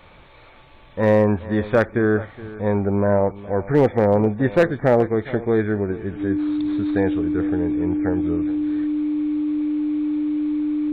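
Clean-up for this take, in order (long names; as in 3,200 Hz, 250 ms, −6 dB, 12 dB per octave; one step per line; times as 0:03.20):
clipped peaks rebuilt −8 dBFS
notch filter 300 Hz, Q 30
echo removal 419 ms −17.5 dB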